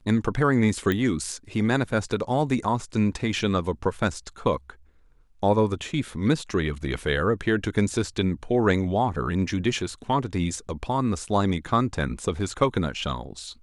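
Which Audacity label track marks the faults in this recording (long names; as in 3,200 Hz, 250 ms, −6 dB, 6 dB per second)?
0.920000	0.920000	click −13 dBFS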